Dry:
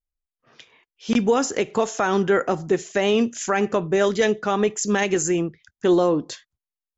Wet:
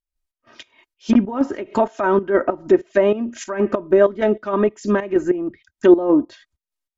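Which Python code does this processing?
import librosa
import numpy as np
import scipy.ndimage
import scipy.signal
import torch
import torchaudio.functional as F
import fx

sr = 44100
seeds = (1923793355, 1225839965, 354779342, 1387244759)

y = x + 0.71 * np.pad(x, (int(3.2 * sr / 1000.0), 0))[:len(x)]
y = fx.env_lowpass_down(y, sr, base_hz=1200.0, full_db=-16.5)
y = fx.volume_shaper(y, sr, bpm=96, per_beat=2, depth_db=-13, release_ms=155.0, shape='slow start')
y = y * 10.0 ** (4.5 / 20.0)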